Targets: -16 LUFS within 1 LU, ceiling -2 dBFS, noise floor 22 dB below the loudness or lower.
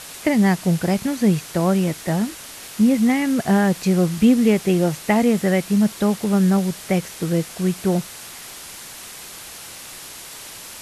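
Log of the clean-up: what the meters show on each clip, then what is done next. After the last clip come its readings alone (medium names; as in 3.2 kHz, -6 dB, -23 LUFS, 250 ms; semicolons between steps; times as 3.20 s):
noise floor -38 dBFS; noise floor target -42 dBFS; loudness -19.5 LUFS; peak level -6.0 dBFS; loudness target -16.0 LUFS
-> noise reduction 6 dB, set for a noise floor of -38 dBFS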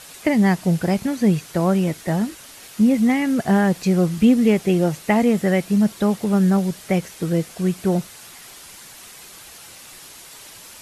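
noise floor -42 dBFS; loudness -19.5 LUFS; peak level -6.0 dBFS; loudness target -16.0 LUFS
-> trim +3.5 dB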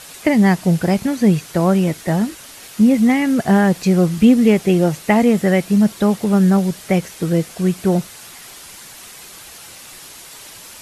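loudness -16.0 LUFS; peak level -2.5 dBFS; noise floor -39 dBFS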